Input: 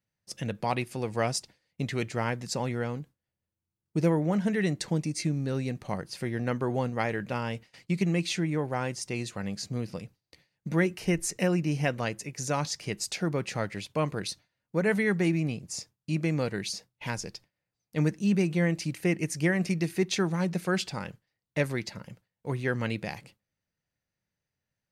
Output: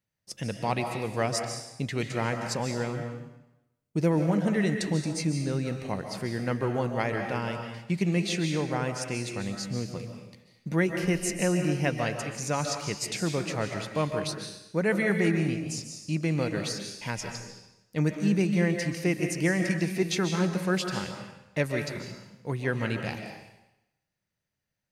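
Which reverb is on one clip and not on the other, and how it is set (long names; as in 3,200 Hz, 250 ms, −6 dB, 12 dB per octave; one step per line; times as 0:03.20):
comb and all-pass reverb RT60 0.89 s, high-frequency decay 1×, pre-delay 105 ms, DRR 4.5 dB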